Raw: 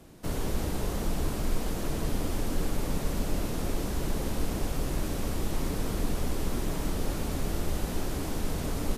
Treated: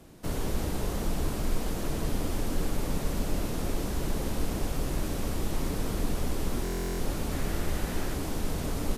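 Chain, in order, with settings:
0:07.32–0:08.14: parametric band 1,800 Hz +5 dB 0.92 octaves
buffer that repeats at 0:06.63, samples 1,024, times 15

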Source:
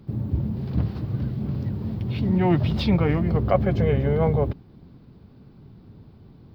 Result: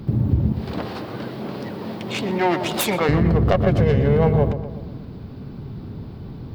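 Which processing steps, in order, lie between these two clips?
stylus tracing distortion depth 0.21 ms
0:00.52–0:03.09: high-pass filter 480 Hz 12 dB per octave
downward compressor 2 to 1, threshold −34 dBFS, peak gain reduction 11.5 dB
feedback echo with a low-pass in the loop 122 ms, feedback 56%, low-pass 2,100 Hz, level −9.5 dB
boost into a limiter +19 dB
level −6 dB

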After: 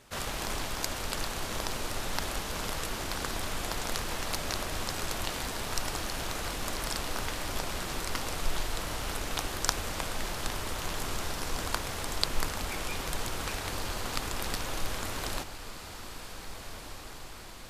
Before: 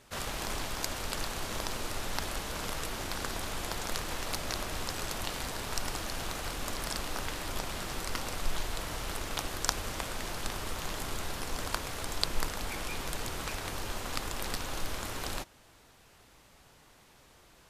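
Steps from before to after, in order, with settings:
feedback delay with all-pass diffusion 1,700 ms, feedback 66%, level −11 dB
level +1.5 dB

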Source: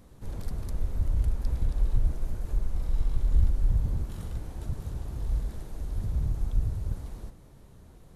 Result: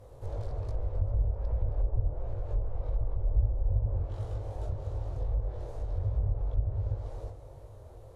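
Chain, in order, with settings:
chorus effect 2.6 Hz, delay 19 ms, depth 3.4 ms
treble cut that deepens with the level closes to 910 Hz, closed at −23 dBFS
parametric band 130 Hz +9.5 dB 1.8 octaves
in parallel at +1 dB: downward compressor, threshold −33 dBFS, peak gain reduction 16.5 dB
on the sum: drawn EQ curve 110 Hz 0 dB, 180 Hz −21 dB, 530 Hz +13 dB, 1,700 Hz −2 dB
on a send: echo machine with several playback heads 132 ms, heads second and third, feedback 45%, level −19.5 dB
on the sum: level −5.5 dB

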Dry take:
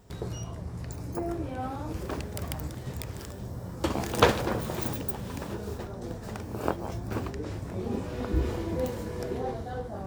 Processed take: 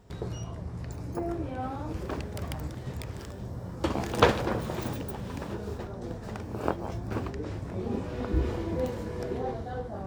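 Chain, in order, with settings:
high-shelf EQ 7,400 Hz −10.5 dB

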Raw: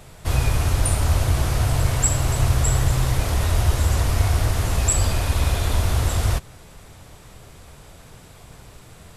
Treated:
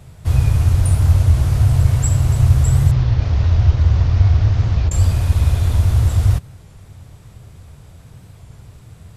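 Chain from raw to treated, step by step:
0:02.92–0:04.92: variable-slope delta modulation 32 kbit/s
parametric band 99 Hz +14.5 dB 1.9 octaves
wow of a warped record 33 1/3 rpm, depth 100 cents
level −5 dB

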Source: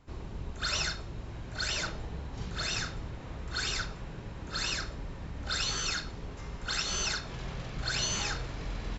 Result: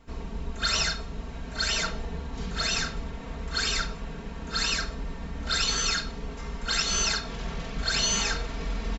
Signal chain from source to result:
comb filter 4.4 ms, depth 73%
level +3.5 dB

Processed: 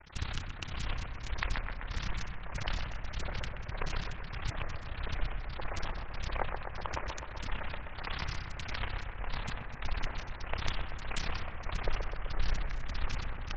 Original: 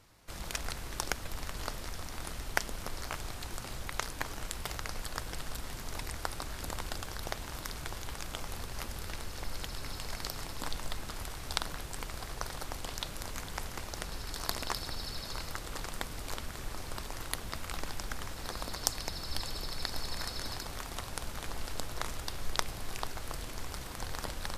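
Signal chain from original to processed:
variable-slope delta modulation 32 kbit/s
Butterworth low-pass 3,800 Hz 96 dB per octave
parametric band 340 Hz −10.5 dB 2.3 octaves
upward compression, threshold −49 dBFS
granular cloud 40 ms, grains 18 per second, spray 12 ms, pitch spread up and down by 12 semitones
time stretch by overlap-add 0.53×, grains 62 ms
on a send: bucket-brigade delay 123 ms, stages 2,048, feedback 72%, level −6 dB
on the sum: wrong playback speed 25 fps video run at 24 fps
highs frequency-modulated by the lows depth 0.6 ms
level +10.5 dB

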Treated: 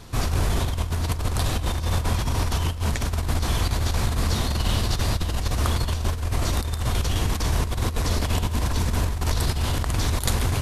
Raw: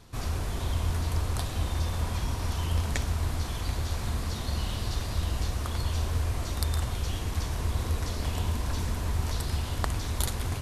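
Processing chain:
compressor whose output falls as the input rises −30 dBFS, ratio −0.5
level +8 dB

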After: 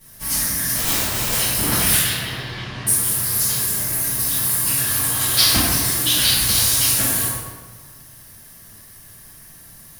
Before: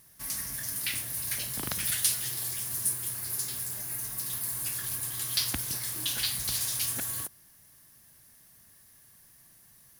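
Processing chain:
0:00.74–0:01.34: phase distortion by the signal itself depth 0.92 ms
0:01.99–0:02.87: low-pass filter 3,600 Hz 24 dB per octave
0:04.87–0:05.73: parametric band 810 Hz +4.5 dB 2.3 octaves
convolution reverb RT60 1.5 s, pre-delay 3 ms, DRR −14.5 dB
level −2 dB

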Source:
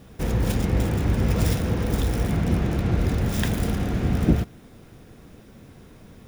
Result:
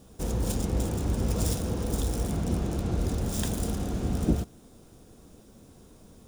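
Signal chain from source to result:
octave-band graphic EQ 125/2,000/8,000 Hz −5/−10/+8 dB
level −4 dB

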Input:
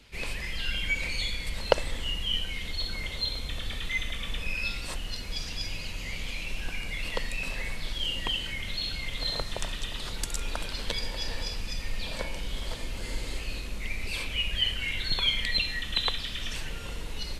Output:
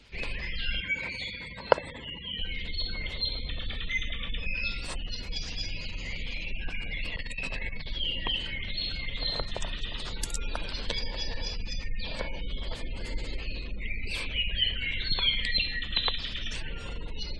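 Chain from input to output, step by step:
gate on every frequency bin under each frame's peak −30 dB strong
0:00.80–0:02.39: loudspeaker in its box 110–7,700 Hz, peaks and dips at 1,000 Hz +7 dB, 1,500 Hz +4 dB, 3,000 Hz −7 dB, 4,300 Hz −5 dB, 6,200 Hz −9 dB
0:07.16–0:07.86: compressor whose output falls as the input rises −33 dBFS, ratio −0.5

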